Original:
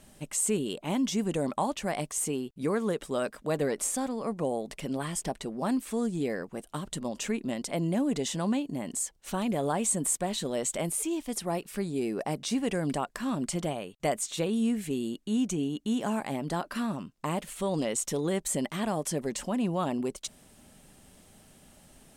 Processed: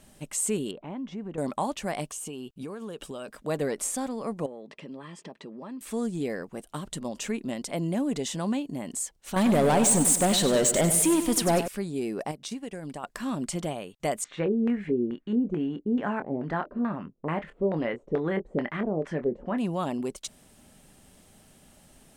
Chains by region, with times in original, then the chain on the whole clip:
0.71–1.38 s: low-pass 1.8 kHz + compression 2:1, threshold -38 dBFS
2.05–3.28 s: peaking EQ 2.9 kHz +7.5 dB 0.25 oct + band-stop 2 kHz, Q 5.9 + compression 10:1, threshold -33 dBFS
4.46–5.81 s: band-pass 150–3500 Hz + compression 2.5:1, threshold -40 dBFS + comb of notches 730 Hz
9.36–11.68 s: waveshaping leveller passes 3 + feedback delay 97 ms, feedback 55%, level -10 dB
12.31–13.04 s: transient shaper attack +11 dB, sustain -7 dB + compression 3:1, threshold -36 dBFS
14.24–19.58 s: LFO low-pass square 2.3 Hz 450–1800 Hz + doubling 25 ms -10 dB
whole clip: none

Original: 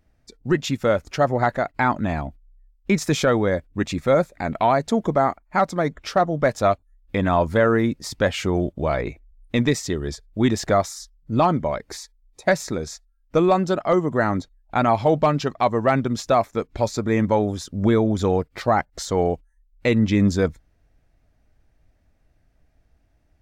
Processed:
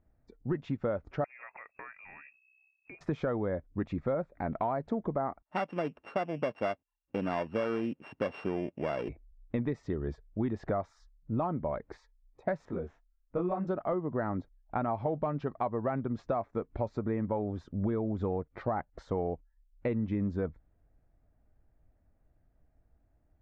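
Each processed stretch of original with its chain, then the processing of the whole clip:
1.24–3.01 s: compression 5:1, threshold -33 dBFS + frequency inversion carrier 2.6 kHz
5.42–9.09 s: sorted samples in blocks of 16 samples + high-pass 190 Hz + dynamic bell 4.5 kHz, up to +7 dB, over -37 dBFS, Q 1.1
12.65–13.67 s: median filter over 9 samples + detune thickener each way 36 cents
whole clip: low-pass 1.3 kHz 12 dB/octave; compression, threshold -22 dBFS; trim -6 dB

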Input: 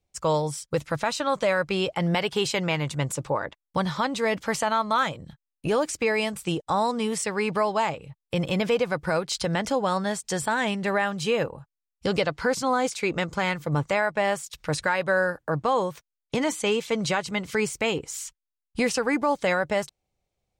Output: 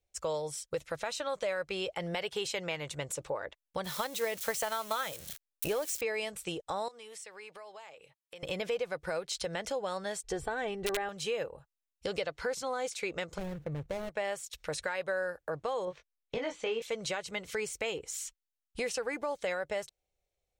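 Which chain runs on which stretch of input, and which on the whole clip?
3.84–6.01 s: zero-crossing glitches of -25 dBFS + transient shaper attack +8 dB, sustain 0 dB
6.88–8.43 s: high-pass 720 Hz 6 dB/octave + compression 3:1, threshold -44 dBFS
10.23–11.09 s: tilt EQ -3.5 dB/octave + comb 2.6 ms, depth 55% + integer overflow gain 11.5 dB
13.38–14.10 s: median filter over 41 samples + tone controls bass +9 dB, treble -3 dB + compression 2:1, threshold -22 dBFS
15.85–16.82 s: distance through air 170 m + doubling 22 ms -4.5 dB
whole clip: graphic EQ 125/250/500/1000 Hz -9/-10/+4/-6 dB; compression 2:1, threshold -31 dBFS; band-stop 4.8 kHz, Q 19; trim -3.5 dB

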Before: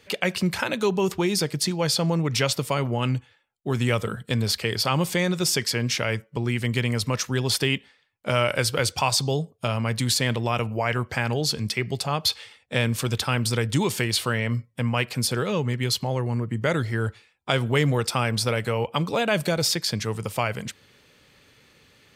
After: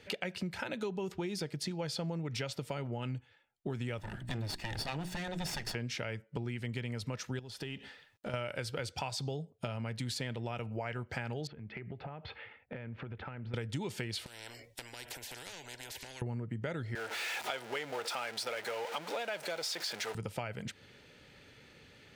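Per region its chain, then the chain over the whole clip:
3.98–5.75 s: comb filter that takes the minimum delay 1.1 ms + hum notches 60/120/180/240/300/360 Hz + upward compressor, threshold -34 dBFS
7.39–8.34 s: companding laws mixed up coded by mu + band-stop 2.2 kHz + compression 3:1, threshold -37 dBFS
11.47–13.54 s: low-pass 2.3 kHz 24 dB/octave + compression 16:1, threshold -38 dBFS
14.26–16.22 s: compression 8:1, threshold -30 dBFS + static phaser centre 520 Hz, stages 4 + spectrum-flattening compressor 10:1
16.95–20.15 s: jump at every zero crossing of -23 dBFS + high-pass 580 Hz
whole clip: low-pass 3.7 kHz 6 dB/octave; band-stop 1.1 kHz, Q 5.6; compression 5:1, threshold -36 dBFS

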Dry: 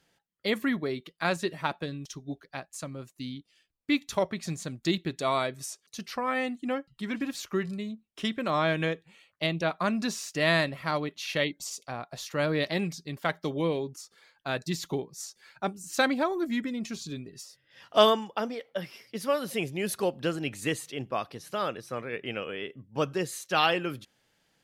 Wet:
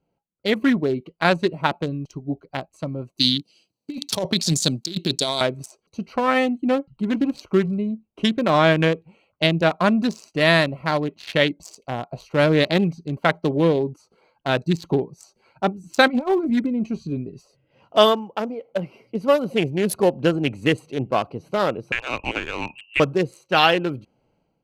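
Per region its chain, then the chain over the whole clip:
3.17–5.41 s: high-pass 120 Hz 24 dB/octave + resonant high shelf 2.8 kHz +14 dB, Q 1.5 + compressor with a negative ratio -31 dBFS
16.06–16.50 s: peaking EQ 2 kHz +8 dB 1 oct + compressor with a negative ratio -30 dBFS, ratio -0.5 + doubling 13 ms -11.5 dB
21.92–23.00 s: frequency inversion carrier 2.9 kHz + three bands compressed up and down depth 100%
whole clip: local Wiener filter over 25 samples; band-stop 1.2 kHz, Q 15; level rider gain up to 11.5 dB

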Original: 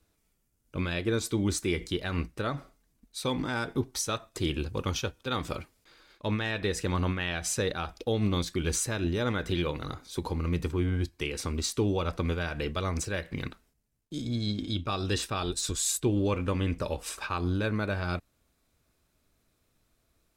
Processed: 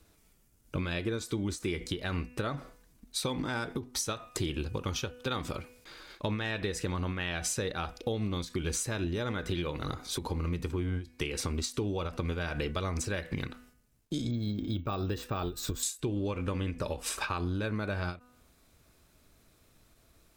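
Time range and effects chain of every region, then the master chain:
14.31–15.83 s: treble shelf 2.2 kHz -11.5 dB + careless resampling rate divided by 2×, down filtered, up hold
whole clip: de-hum 247.3 Hz, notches 12; compression 6:1, threshold -39 dBFS; endings held to a fixed fall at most 210 dB/s; trim +8.5 dB

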